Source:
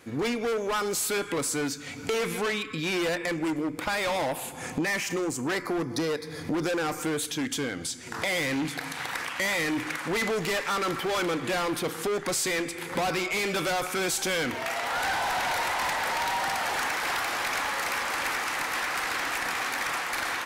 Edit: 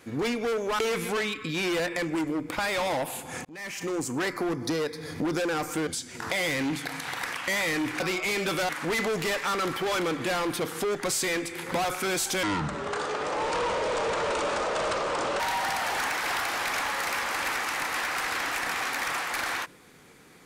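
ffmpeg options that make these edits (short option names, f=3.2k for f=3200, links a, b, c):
-filter_complex "[0:a]asplit=9[a][b][c][d][e][f][g][h][i];[a]atrim=end=0.792[j];[b]atrim=start=2.078:end=4.74,asetpts=PTS-STARTPTS,afade=t=out:st=2.658:d=0.004:c=hsin[k];[c]atrim=start=4.74:end=7.162,asetpts=PTS-STARTPTS,afade=t=in:d=0.55[l];[d]atrim=start=7.788:end=9.922[m];[e]atrim=start=13.078:end=13.772[n];[f]atrim=start=9.918:end=13.082[o];[g]atrim=start=13.768:end=14.354[p];[h]atrim=start=14.35:end=16.19,asetpts=PTS-STARTPTS,asetrate=27342,aresample=44100,atrim=end_sample=130877,asetpts=PTS-STARTPTS[q];[i]atrim=start=16.186[r];[k][l]concat=n=2:v=0:a=1[s];[j][s]acrossfade=d=0.004:c1=hsin:c2=hsin[t];[t][m]acrossfade=d=0.004:c1=hsin:c2=hsin[u];[u][n]acrossfade=d=0.004:c1=hsin:c2=hsin[v];[v][o]acrossfade=d=0.004:c1=hsin:c2=hsin[w];[w][p]acrossfade=d=0.004:c1=hsin:c2=hsin[x];[x][q]acrossfade=d=0.004:c1=hsin:c2=hsin[y];[y][r]acrossfade=d=0.004:c1=hsin:c2=hsin"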